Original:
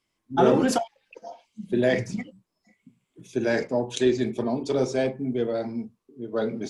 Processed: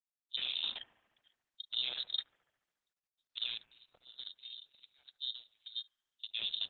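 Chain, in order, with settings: bass shelf 330 Hz +5 dB; compression 2.5:1, threshold -23 dBFS, peak gain reduction 8 dB; peak limiter -21.5 dBFS, peak gain reduction 8.5 dB; 3.58–6.23 s: static phaser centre 2.8 kHz, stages 8; touch-sensitive flanger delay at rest 8.3 ms, full sweep at -27 dBFS; power-law waveshaper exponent 3; feedback echo behind a high-pass 71 ms, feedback 68%, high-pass 3 kHz, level -10 dB; frequency inversion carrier 3.9 kHz; Opus 12 kbps 48 kHz

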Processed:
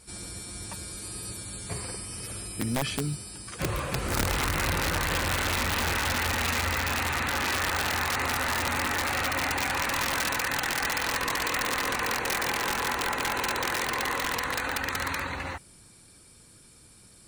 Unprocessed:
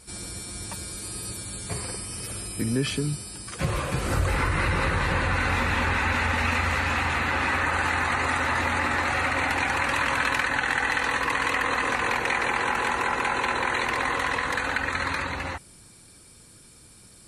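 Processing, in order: modulation noise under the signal 33 dB; integer overflow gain 17 dB; trim -3 dB

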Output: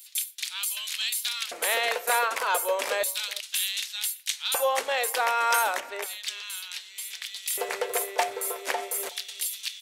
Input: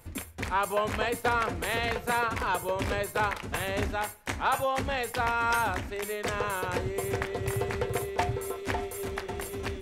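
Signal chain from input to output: tilt EQ +3.5 dB/octave; LFO high-pass square 0.33 Hz 530–3600 Hz; 5.80–7.24 s: treble shelf 4.3 kHz -9 dB; speakerphone echo 370 ms, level -22 dB

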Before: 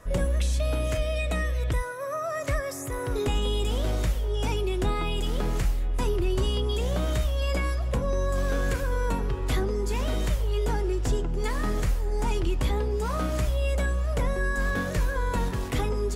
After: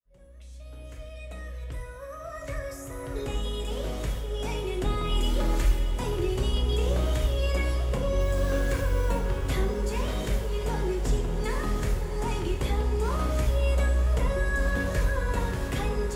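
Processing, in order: fade-in on the opening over 5.20 s; 5.09–5.96 s: comb 3.4 ms, depth 93%; 8.20–9.18 s: word length cut 8-bit, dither none; echo that smears into a reverb 649 ms, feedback 72%, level -11 dB; reverberation RT60 0.80 s, pre-delay 3 ms, DRR 2.5 dB; trim -3 dB

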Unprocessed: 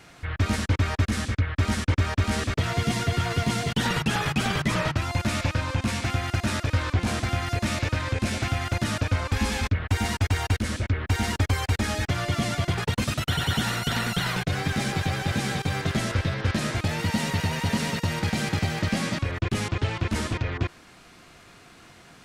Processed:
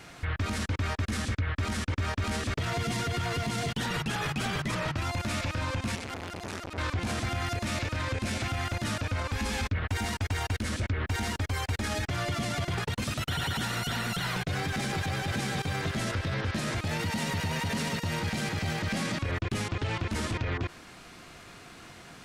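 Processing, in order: peak limiter -24.5 dBFS, peak gain reduction 12 dB; 5.95–6.78 s: transformer saturation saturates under 790 Hz; trim +2 dB

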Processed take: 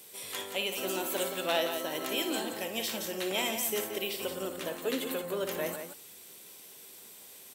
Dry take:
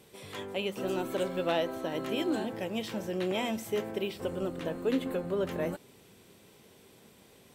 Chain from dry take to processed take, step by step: RIAA curve recording; multi-tap echo 58/174 ms -9.5/-8 dB

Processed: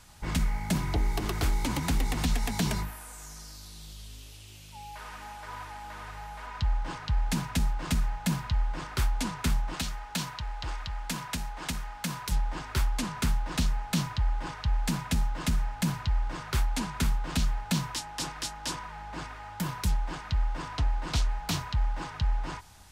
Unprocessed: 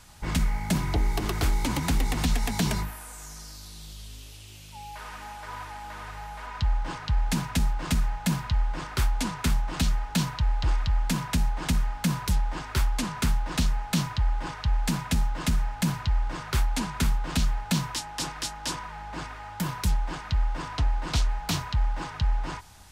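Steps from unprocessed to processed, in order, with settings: 9.75–12.32 s: bass shelf 330 Hz -9.5 dB; trim -2.5 dB

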